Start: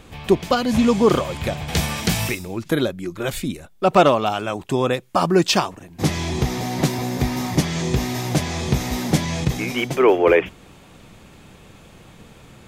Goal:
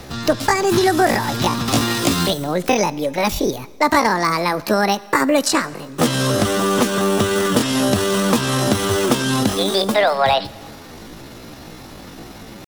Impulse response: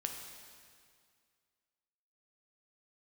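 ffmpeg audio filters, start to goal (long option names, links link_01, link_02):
-filter_complex "[0:a]acrossover=split=130|680|4300[link_01][link_02][link_03][link_04];[link_01]acompressor=threshold=-31dB:ratio=4[link_05];[link_02]acompressor=threshold=-26dB:ratio=4[link_06];[link_03]acompressor=threshold=-29dB:ratio=4[link_07];[link_04]acompressor=threshold=-39dB:ratio=4[link_08];[link_05][link_06][link_07][link_08]amix=inputs=4:normalize=0,asetrate=70004,aresample=44100,atempo=0.629961,asplit=2[link_09][link_10];[1:a]atrim=start_sample=2205,asetrate=61740,aresample=44100[link_11];[link_10][link_11]afir=irnorm=-1:irlink=0,volume=-9dB[link_12];[link_09][link_12]amix=inputs=2:normalize=0,volume=7dB"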